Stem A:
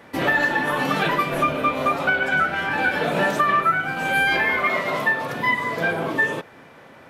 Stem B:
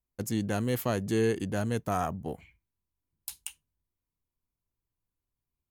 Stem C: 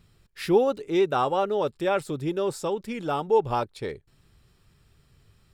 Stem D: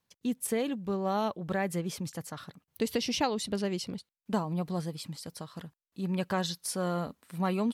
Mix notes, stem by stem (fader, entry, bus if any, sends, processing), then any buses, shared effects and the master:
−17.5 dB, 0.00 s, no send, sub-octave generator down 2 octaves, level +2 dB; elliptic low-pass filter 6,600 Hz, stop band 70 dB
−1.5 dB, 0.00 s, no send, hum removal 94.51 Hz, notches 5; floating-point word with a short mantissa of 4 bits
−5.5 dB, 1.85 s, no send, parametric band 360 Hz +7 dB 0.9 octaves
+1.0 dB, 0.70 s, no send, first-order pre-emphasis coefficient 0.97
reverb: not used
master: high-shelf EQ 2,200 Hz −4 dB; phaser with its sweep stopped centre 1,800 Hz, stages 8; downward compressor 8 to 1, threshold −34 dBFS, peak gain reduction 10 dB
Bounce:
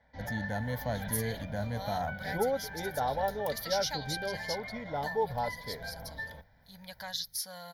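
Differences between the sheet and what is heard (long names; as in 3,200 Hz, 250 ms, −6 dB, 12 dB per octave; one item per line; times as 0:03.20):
stem B: missing floating-point word with a short mantissa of 4 bits
stem D +1.0 dB → +10.0 dB
master: missing downward compressor 8 to 1, threshold −34 dBFS, peak gain reduction 10 dB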